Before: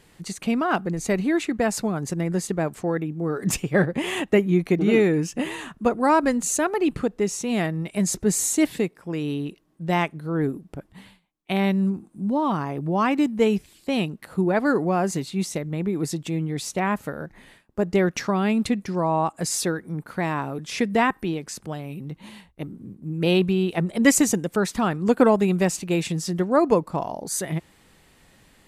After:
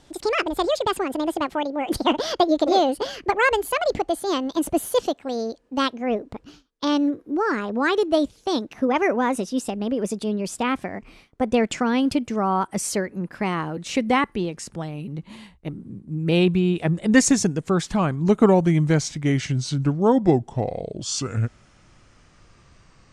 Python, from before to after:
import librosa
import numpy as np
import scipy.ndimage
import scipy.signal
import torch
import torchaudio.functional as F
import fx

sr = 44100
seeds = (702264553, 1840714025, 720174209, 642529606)

y = fx.speed_glide(x, sr, from_pct=187, to_pct=61)
y = scipy.signal.sosfilt(scipy.signal.butter(4, 9800.0, 'lowpass', fs=sr, output='sos'), y)
y = fx.low_shelf(y, sr, hz=140.0, db=6.0)